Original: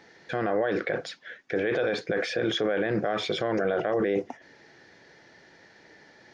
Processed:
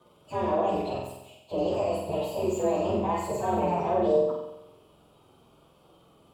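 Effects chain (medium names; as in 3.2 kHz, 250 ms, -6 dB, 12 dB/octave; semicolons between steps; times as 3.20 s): frequency axis rescaled in octaves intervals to 129%; resonant high shelf 1.6 kHz -9 dB, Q 1.5; flutter echo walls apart 7.9 m, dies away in 0.89 s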